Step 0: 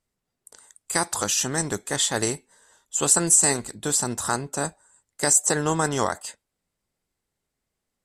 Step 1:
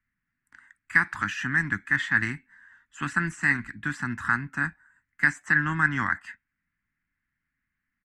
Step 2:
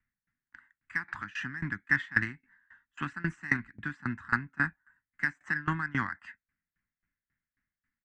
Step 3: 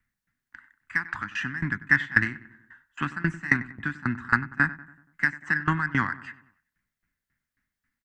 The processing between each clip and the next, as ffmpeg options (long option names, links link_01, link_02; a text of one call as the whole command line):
ffmpeg -i in.wav -filter_complex "[0:a]firequalizer=gain_entry='entry(280,0);entry(450,-29);entry(990,-5);entry(1700,14);entry(3500,-14);entry(8800,-27)':delay=0.05:min_phase=1,acrossover=split=120|6000[link_01][link_02][link_03];[link_03]alimiter=level_in=18.5dB:limit=-24dB:level=0:latency=1:release=138,volume=-18.5dB[link_04];[link_01][link_02][link_04]amix=inputs=3:normalize=0,volume=-1dB" out.wav
ffmpeg -i in.wav -af "adynamicsmooth=sensitivity=1:basefreq=4300,aeval=exprs='val(0)*pow(10,-23*if(lt(mod(3.7*n/s,1),2*abs(3.7)/1000),1-mod(3.7*n/s,1)/(2*abs(3.7)/1000),(mod(3.7*n/s,1)-2*abs(3.7)/1000)/(1-2*abs(3.7)/1000))/20)':channel_layout=same,volume=2dB" out.wav
ffmpeg -i in.wav -filter_complex "[0:a]asplit=2[link_01][link_02];[link_02]adelay=95,lowpass=frequency=2100:poles=1,volume=-16dB,asplit=2[link_03][link_04];[link_04]adelay=95,lowpass=frequency=2100:poles=1,volume=0.53,asplit=2[link_05][link_06];[link_06]adelay=95,lowpass=frequency=2100:poles=1,volume=0.53,asplit=2[link_07][link_08];[link_08]adelay=95,lowpass=frequency=2100:poles=1,volume=0.53,asplit=2[link_09][link_10];[link_10]adelay=95,lowpass=frequency=2100:poles=1,volume=0.53[link_11];[link_01][link_03][link_05][link_07][link_09][link_11]amix=inputs=6:normalize=0,volume=6dB" out.wav